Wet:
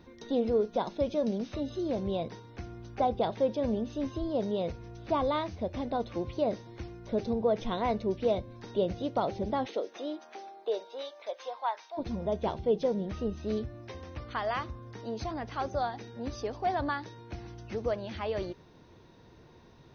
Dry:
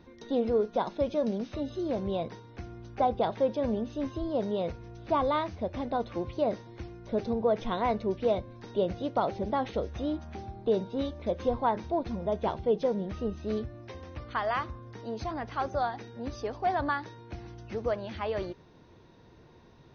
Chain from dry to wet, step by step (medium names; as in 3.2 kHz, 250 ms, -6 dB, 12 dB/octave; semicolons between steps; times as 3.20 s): dynamic bell 1.3 kHz, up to -4 dB, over -42 dBFS, Q 0.88; 9.65–11.97 s: high-pass 280 Hz -> 870 Hz 24 dB/octave; treble shelf 5.3 kHz +4.5 dB